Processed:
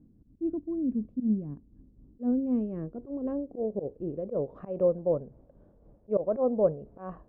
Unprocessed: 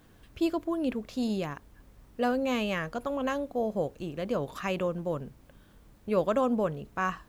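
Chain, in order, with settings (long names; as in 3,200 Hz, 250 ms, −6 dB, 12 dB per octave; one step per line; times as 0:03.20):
amplitude tremolo 3.9 Hz, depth 50%
volume swells 101 ms
low-pass filter sweep 250 Hz → 580 Hz, 0:01.53–0:05.00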